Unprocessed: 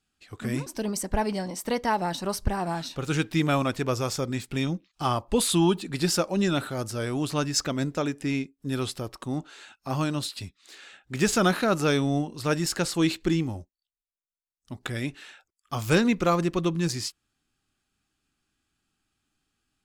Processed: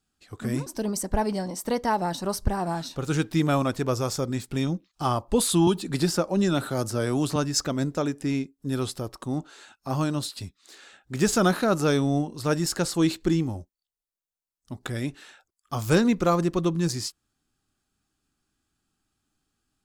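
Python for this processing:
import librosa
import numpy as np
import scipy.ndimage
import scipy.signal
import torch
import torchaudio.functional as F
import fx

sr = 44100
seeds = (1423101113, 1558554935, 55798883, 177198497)

y = fx.peak_eq(x, sr, hz=2500.0, db=-6.5, octaves=1.2)
y = fx.band_squash(y, sr, depth_pct=70, at=(5.67, 7.36))
y = y * 10.0 ** (1.5 / 20.0)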